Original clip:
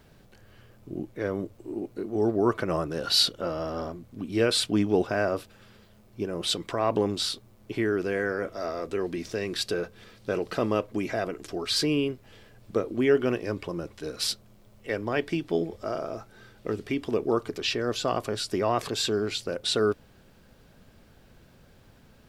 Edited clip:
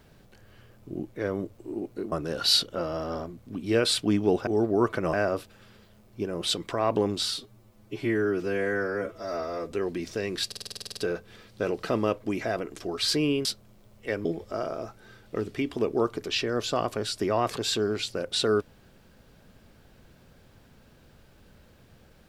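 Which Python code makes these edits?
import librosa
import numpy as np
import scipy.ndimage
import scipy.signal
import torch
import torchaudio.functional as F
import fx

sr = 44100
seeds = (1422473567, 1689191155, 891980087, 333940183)

y = fx.edit(x, sr, fx.move(start_s=2.12, length_s=0.66, to_s=5.13),
    fx.stretch_span(start_s=7.25, length_s=1.64, factor=1.5),
    fx.stutter(start_s=9.65, slice_s=0.05, count=11),
    fx.cut(start_s=12.13, length_s=2.13),
    fx.cut(start_s=15.06, length_s=0.51), tone=tone)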